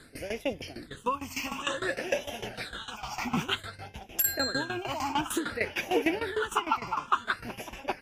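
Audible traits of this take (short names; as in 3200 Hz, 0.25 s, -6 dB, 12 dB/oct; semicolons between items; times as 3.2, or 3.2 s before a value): phasing stages 8, 0.55 Hz, lowest notch 490–1300 Hz; tremolo saw down 6.6 Hz, depth 85%; MP3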